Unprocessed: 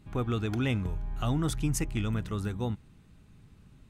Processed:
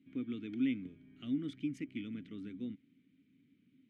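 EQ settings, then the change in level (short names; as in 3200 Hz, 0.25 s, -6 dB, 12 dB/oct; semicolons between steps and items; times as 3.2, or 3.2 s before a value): vowel filter i; HPF 110 Hz 12 dB/oct; high shelf 4500 Hz -6.5 dB; +2.5 dB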